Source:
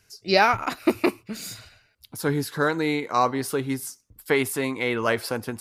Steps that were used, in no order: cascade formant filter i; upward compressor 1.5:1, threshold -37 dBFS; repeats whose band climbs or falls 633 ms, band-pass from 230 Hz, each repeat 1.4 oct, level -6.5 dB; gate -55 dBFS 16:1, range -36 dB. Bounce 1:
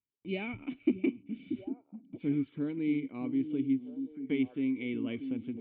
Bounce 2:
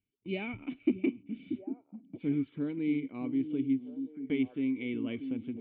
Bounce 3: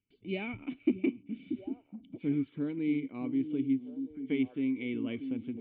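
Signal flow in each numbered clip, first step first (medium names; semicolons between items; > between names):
cascade formant filter > upward compressor > gate > repeats whose band climbs or falls; cascade formant filter > gate > upward compressor > repeats whose band climbs or falls; repeats whose band climbs or falls > gate > cascade formant filter > upward compressor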